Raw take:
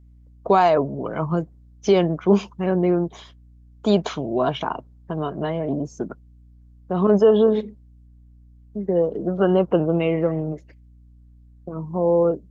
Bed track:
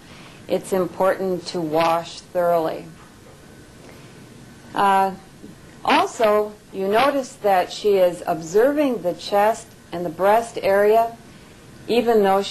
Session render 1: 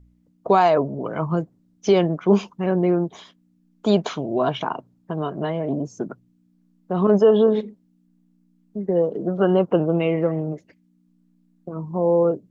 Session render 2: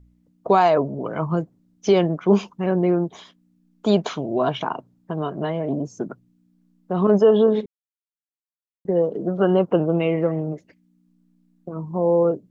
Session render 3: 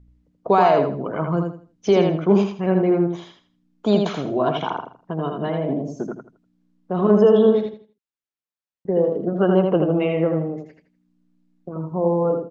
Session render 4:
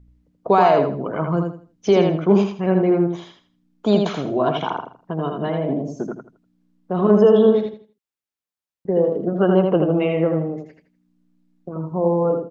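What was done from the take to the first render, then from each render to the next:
de-hum 60 Hz, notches 2
7.66–8.85 mute
air absorption 72 m; feedback echo 81 ms, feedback 26%, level -4.5 dB
gain +1 dB

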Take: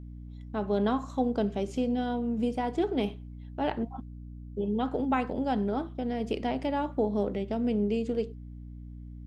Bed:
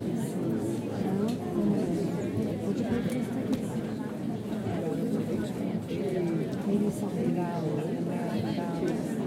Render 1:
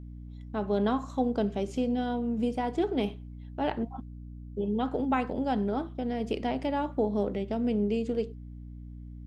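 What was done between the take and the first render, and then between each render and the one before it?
nothing audible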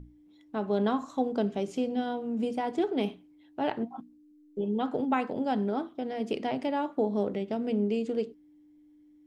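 notches 60/120/180/240 Hz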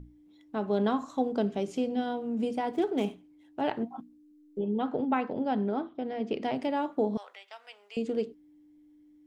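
2.72–3.61 median filter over 9 samples; 4.58–6.42 air absorption 150 m; 7.17–7.97 HPF 1000 Hz 24 dB/oct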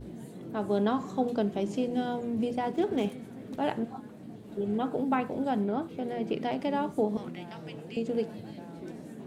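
add bed -12.5 dB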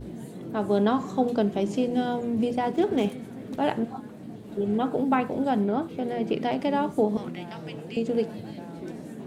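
gain +4.5 dB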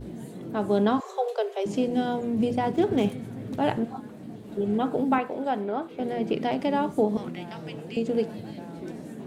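1–1.66 Chebyshev high-pass 380 Hz, order 10; 2.4–3.78 bell 110 Hz +10.5 dB; 5.18–6 tone controls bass -14 dB, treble -6 dB

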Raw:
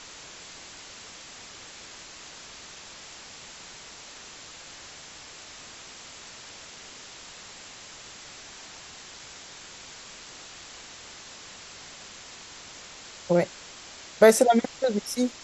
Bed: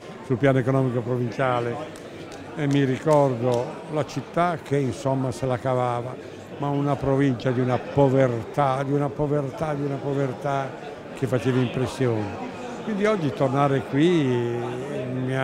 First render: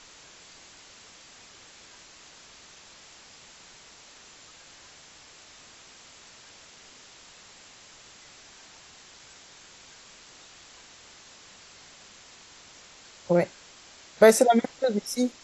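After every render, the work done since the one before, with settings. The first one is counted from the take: noise print and reduce 6 dB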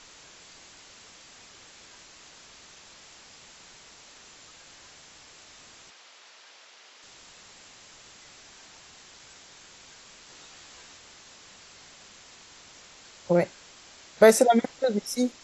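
5.9–7.03 BPF 490–5500 Hz; 10.28–10.98 doubler 14 ms -4 dB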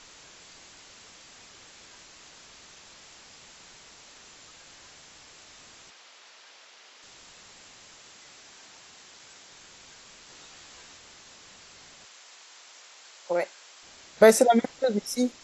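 7.94–9.52 low shelf 100 Hz -10 dB; 12.05–13.83 HPF 560 Hz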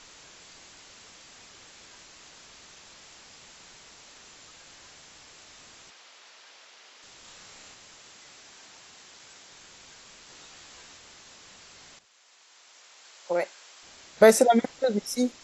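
7.21–7.74 flutter echo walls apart 5.5 m, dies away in 0.45 s; 11.99–13.35 fade in, from -13 dB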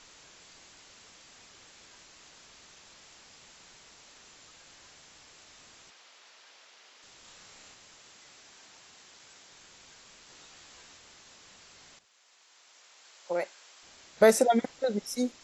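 gain -4 dB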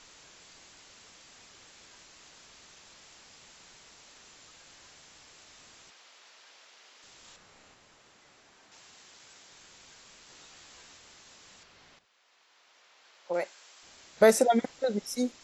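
7.36–8.72 high shelf 2600 Hz -10 dB; 11.63–13.34 bell 9200 Hz -15 dB 1.2 oct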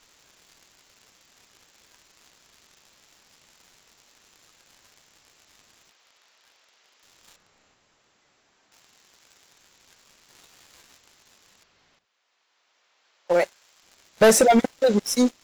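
sample leveller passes 3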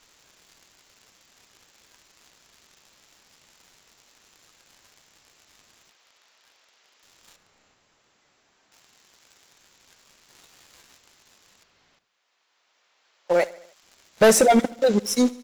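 feedback echo 73 ms, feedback 57%, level -21 dB

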